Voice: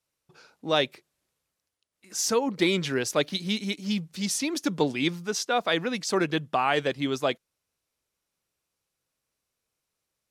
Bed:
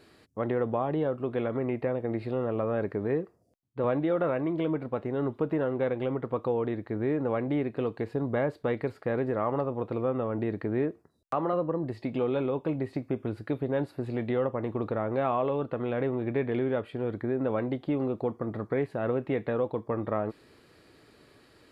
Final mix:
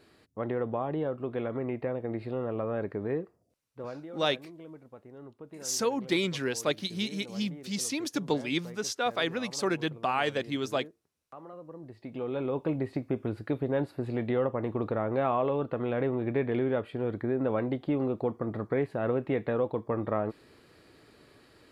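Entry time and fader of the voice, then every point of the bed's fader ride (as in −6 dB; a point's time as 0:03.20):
3.50 s, −4.0 dB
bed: 0:03.39 −3 dB
0:04.17 −18 dB
0:11.58 −18 dB
0:12.60 0 dB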